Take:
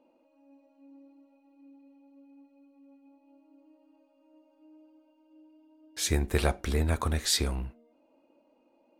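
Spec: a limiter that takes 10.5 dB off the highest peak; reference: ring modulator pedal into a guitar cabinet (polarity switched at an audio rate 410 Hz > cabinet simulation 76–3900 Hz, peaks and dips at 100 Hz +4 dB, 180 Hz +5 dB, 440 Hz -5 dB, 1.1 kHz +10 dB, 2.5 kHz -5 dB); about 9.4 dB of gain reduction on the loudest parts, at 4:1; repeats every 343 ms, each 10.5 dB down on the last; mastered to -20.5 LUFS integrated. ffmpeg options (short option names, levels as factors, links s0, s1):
-af "acompressor=threshold=0.0224:ratio=4,alimiter=level_in=2.24:limit=0.0631:level=0:latency=1,volume=0.447,aecho=1:1:343|686|1029:0.299|0.0896|0.0269,aeval=exprs='val(0)*sgn(sin(2*PI*410*n/s))':c=same,highpass=76,equalizer=f=100:t=q:w=4:g=4,equalizer=f=180:t=q:w=4:g=5,equalizer=f=440:t=q:w=4:g=-5,equalizer=f=1100:t=q:w=4:g=10,equalizer=f=2500:t=q:w=4:g=-5,lowpass=f=3900:w=0.5412,lowpass=f=3900:w=1.3066,volume=12.6"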